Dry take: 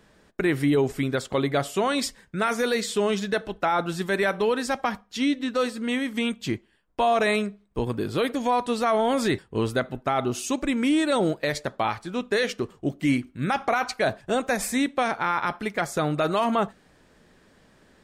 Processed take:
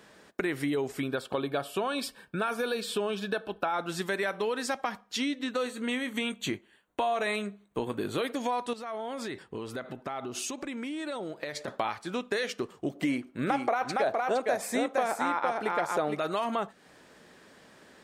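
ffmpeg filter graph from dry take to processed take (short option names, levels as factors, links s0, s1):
-filter_complex "[0:a]asettb=1/sr,asplit=3[s0][s1][s2];[s0]atrim=end=1.004[s3];[s1]atrim=start=1:end=3.74,asetpts=PTS-STARTPTS,afade=t=in:d=0.004:c=qsin,afade=t=out:st=2.736:d=0.004:c=qsin,asuperstop=centerf=2000:order=8:qfactor=5.5,equalizer=f=6600:t=o:w=0.68:g=-12[s4];[s2]atrim=start=3.736[s5];[s3][s4]acrossfade=d=0.004:c1=hsin:c2=qsin[s6];[s6][s5]acrossfade=d=0.004:c1=qsin:c2=hsin,asettb=1/sr,asplit=3[s7][s8][s9];[s7]atrim=end=5.514[s10];[s8]atrim=start=5.51:end=8.22,asetpts=PTS-STARTPTS,afade=t=in:d=0.004:c=qsin,afade=t=out:st=2.706:d=0.004:c=qsin,asuperstop=centerf=5100:order=4:qfactor=4.1,asplit=2[s11][s12];[s12]adelay=20,volume=0.211[s13];[s11][s13]amix=inputs=2:normalize=0,atrim=end_sample=119511[s14];[s9]atrim=start=8.216[s15];[s10][s14]acrossfade=d=0.004:c1=hsin:c2=qsin[s16];[s16][s15]acrossfade=d=0.004:c1=qsin:c2=hsin,asettb=1/sr,asplit=3[s17][s18][s19];[s17]atrim=end=8.734[s20];[s18]atrim=start=8.73:end=11.68,asetpts=PTS-STARTPTS,afade=t=in:d=0.004:c=qsin,afade=t=out:st=2.946:d=0.004:c=qsin,highshelf=f=6500:g=-6,acompressor=threshold=0.02:ratio=10:attack=3.2:release=140:knee=1:detection=peak[s21];[s19]atrim=start=11.676[s22];[s20][s21]acrossfade=d=0.004:c1=hsin:c2=qsin[s23];[s23][s22]acrossfade=d=0.004:c1=qsin:c2=hsin,asettb=1/sr,asplit=3[s24][s25][s26];[s24]atrim=end=12.954[s27];[s25]atrim=start=12.95:end=16.19,asetpts=PTS-STARTPTS,afade=t=in:d=0.004:c=qsin,afade=t=out:st=3.236:d=0.004:c=qsin,equalizer=f=580:w=0.59:g=9.5,aecho=1:1:463:0.631,atrim=end_sample=142884[s28];[s26]atrim=start=16.186[s29];[s27][s28]acrossfade=d=0.004:c1=hsin:c2=qsin[s30];[s30][s29]acrossfade=d=0.004:c1=qsin:c2=hsin,highpass=f=310:p=1,acompressor=threshold=0.0178:ratio=3,volume=1.68"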